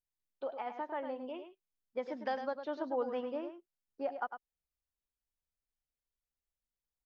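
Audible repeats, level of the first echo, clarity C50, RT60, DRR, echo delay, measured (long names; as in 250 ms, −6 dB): 1, −9.0 dB, no reverb audible, no reverb audible, no reverb audible, 103 ms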